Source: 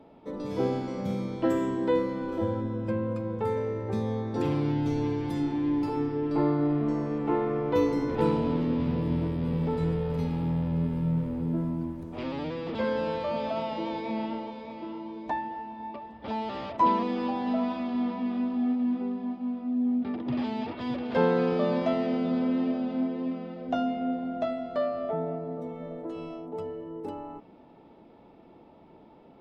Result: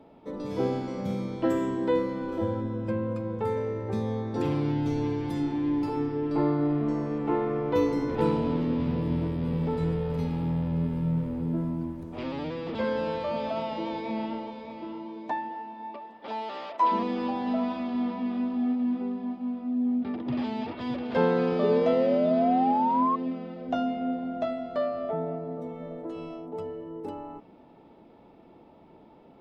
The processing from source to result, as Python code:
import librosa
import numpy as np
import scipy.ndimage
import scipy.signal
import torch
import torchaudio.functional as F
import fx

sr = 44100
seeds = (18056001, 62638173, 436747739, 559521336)

y = fx.highpass(x, sr, hz=fx.line((15.05, 150.0), (16.91, 560.0)), slope=12, at=(15.05, 16.91), fade=0.02)
y = fx.spec_paint(y, sr, seeds[0], shape='rise', start_s=21.63, length_s=1.53, low_hz=410.0, high_hz=1100.0, level_db=-25.0)